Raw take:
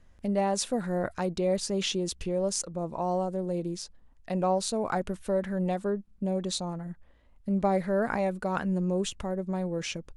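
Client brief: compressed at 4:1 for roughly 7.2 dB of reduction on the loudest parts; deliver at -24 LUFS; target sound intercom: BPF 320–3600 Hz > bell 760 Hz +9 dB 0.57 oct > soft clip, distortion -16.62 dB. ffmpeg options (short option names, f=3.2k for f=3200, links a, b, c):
-af "acompressor=threshold=-30dB:ratio=4,highpass=320,lowpass=3.6k,equalizer=f=760:t=o:w=0.57:g=9,asoftclip=threshold=-24dB,volume=11.5dB"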